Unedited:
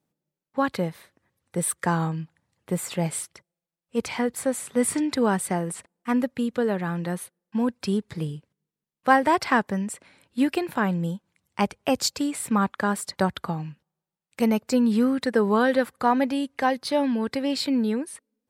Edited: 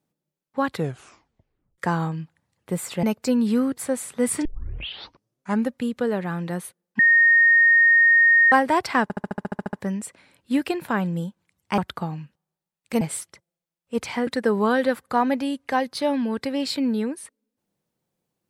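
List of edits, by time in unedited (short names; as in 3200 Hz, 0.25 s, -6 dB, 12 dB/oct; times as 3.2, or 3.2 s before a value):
0.7 tape stop 1.08 s
3.03–4.29 swap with 14.48–15.17
5.02 tape start 1.27 s
7.56–9.09 bleep 1850 Hz -12 dBFS
9.6 stutter 0.07 s, 11 plays
11.65–13.25 cut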